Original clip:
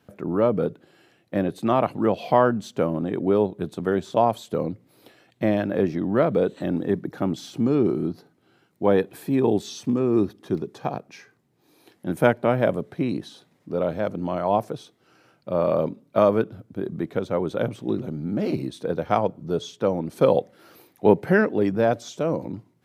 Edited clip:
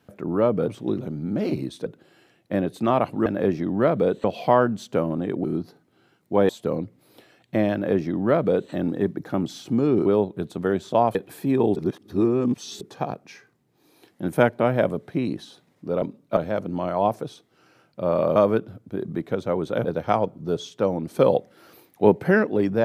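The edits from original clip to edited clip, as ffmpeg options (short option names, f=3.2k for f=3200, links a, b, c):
-filter_complex "[0:a]asplit=15[a][b][c][d][e][f][g][h][i][j][k][l][m][n][o];[a]atrim=end=0.682[p];[b]atrim=start=17.688:end=18.872[q];[c]atrim=start=0.678:end=2.082[r];[d]atrim=start=5.608:end=6.592[s];[e]atrim=start=2.078:end=3.282[t];[f]atrim=start=7.938:end=8.992[u];[g]atrim=start=4.368:end=7.942[v];[h]atrim=start=3.278:end=4.372[w];[i]atrim=start=8.988:end=9.602[x];[j]atrim=start=9.598:end=10.652,asetpts=PTS-STARTPTS,areverse[y];[k]atrim=start=10.648:end=13.862[z];[l]atrim=start=15.848:end=16.202[aa];[m]atrim=start=13.858:end=15.852[ab];[n]atrim=start=16.198:end=17.692[ac];[o]atrim=start=18.868[ad];[p][q]acrossfade=d=0.004:c1=hsin:c2=hsin[ae];[ae][r]acrossfade=d=0.004:c1=hsin:c2=hsin[af];[af][s]acrossfade=d=0.004:c1=hsin:c2=hsin[ag];[ag][t]acrossfade=d=0.004:c1=hsin:c2=hsin[ah];[ah][u]acrossfade=d=0.004:c1=hsin:c2=hsin[ai];[ai][v]acrossfade=d=0.004:c1=hsin:c2=hsin[aj];[aj][w]acrossfade=d=0.004:c1=hsin:c2=hsin[ak];[ak][x]acrossfade=d=0.004:c1=hsin:c2=hsin[al];[al][y]acrossfade=d=0.004:c1=hsin:c2=hsin[am];[am][z]acrossfade=d=0.004:c1=hsin:c2=hsin[an];[an][aa]acrossfade=d=0.004:c1=hsin:c2=hsin[ao];[ao][ab]acrossfade=d=0.004:c1=hsin:c2=hsin[ap];[ap][ac]acrossfade=d=0.004:c1=hsin:c2=hsin[aq];[aq][ad]acrossfade=d=0.004:c1=hsin:c2=hsin"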